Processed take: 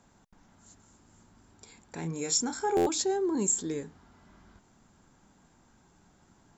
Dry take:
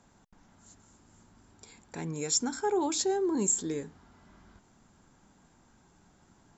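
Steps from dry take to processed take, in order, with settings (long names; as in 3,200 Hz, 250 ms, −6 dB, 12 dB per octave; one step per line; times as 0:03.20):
0:02.00–0:02.89: double-tracking delay 30 ms −6.5 dB
buffer that repeats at 0:02.76, samples 512, times 8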